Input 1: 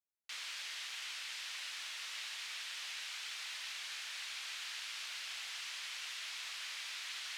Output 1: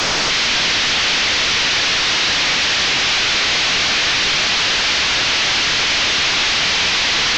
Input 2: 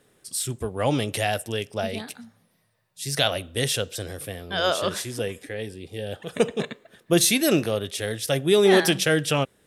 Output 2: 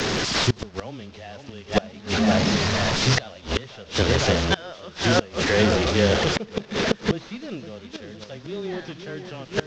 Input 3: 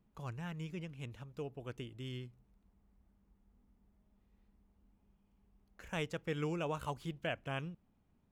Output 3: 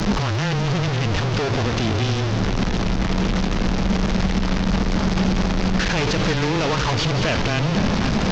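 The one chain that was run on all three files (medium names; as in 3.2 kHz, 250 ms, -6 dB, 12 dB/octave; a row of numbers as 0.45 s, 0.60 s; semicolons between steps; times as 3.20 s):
one-bit delta coder 32 kbps, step -29 dBFS; two-band feedback delay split 2.4 kHz, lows 510 ms, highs 176 ms, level -9 dB; dynamic bell 220 Hz, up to +8 dB, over -48 dBFS, Q 5.4; frequency shift -13 Hz; inverted gate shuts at -18 dBFS, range -26 dB; peak normalisation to -6 dBFS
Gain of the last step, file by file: +18.5 dB, +11.5 dB, +14.0 dB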